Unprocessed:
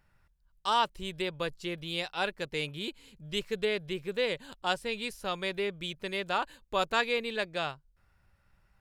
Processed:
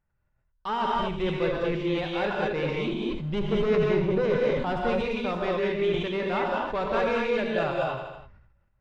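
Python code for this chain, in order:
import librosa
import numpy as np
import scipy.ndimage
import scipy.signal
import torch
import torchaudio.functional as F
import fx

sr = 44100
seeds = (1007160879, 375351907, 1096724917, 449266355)

y = fx.low_shelf(x, sr, hz=320.0, db=7.5, at=(2.86, 4.91))
y = fx.leveller(y, sr, passes=3)
y = np.clip(y, -10.0 ** (-18.0 / 20.0), 10.0 ** (-18.0 / 20.0))
y = fx.spacing_loss(y, sr, db_at_10k=35)
y = fx.echo_feedback(y, sr, ms=80, feedback_pct=46, wet_db=-16)
y = fx.rev_gated(y, sr, seeds[0], gate_ms=250, shape='rising', drr_db=-2.5)
y = fx.sustainer(y, sr, db_per_s=52.0)
y = y * librosa.db_to_amplitude(-4.0)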